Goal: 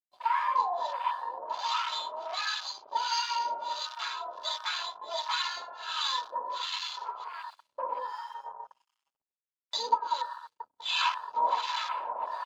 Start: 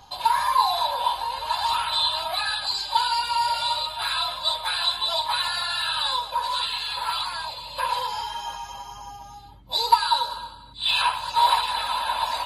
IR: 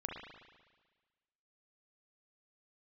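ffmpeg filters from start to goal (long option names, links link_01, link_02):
-filter_complex "[0:a]highpass=frequency=150:width=0.5412,highpass=frequency=150:width=1.3066,equalizer=frequency=160:width_type=q:width=4:gain=-7,equalizer=frequency=830:width_type=q:width=4:gain=-8,equalizer=frequency=1600:width_type=q:width=4:gain=-7,equalizer=frequency=2600:width_type=q:width=4:gain=-6,equalizer=frequency=3900:width_type=q:width=4:gain=-9,lowpass=frequency=5800:width=0.5412,lowpass=frequency=5800:width=1.3066,aecho=1:1:675:0.15,agate=range=-10dB:threshold=-39dB:ratio=16:detection=peak,asplit=2[link_01][link_02];[1:a]atrim=start_sample=2205,adelay=93[link_03];[link_02][link_03]afir=irnorm=-1:irlink=0,volume=-17.5dB[link_04];[link_01][link_04]amix=inputs=2:normalize=0,aeval=exprs='sgn(val(0))*max(abs(val(0))-0.00299,0)':channel_layout=same,lowshelf=frequency=220:gain=-7.5,afwtdn=0.0126,acrossover=split=910[link_05][link_06];[link_05]aeval=exprs='val(0)*(1-1/2+1/2*cos(2*PI*1.4*n/s))':channel_layout=same[link_07];[link_06]aeval=exprs='val(0)*(1-1/2-1/2*cos(2*PI*1.4*n/s))':channel_layout=same[link_08];[link_07][link_08]amix=inputs=2:normalize=0,volume=3.5dB"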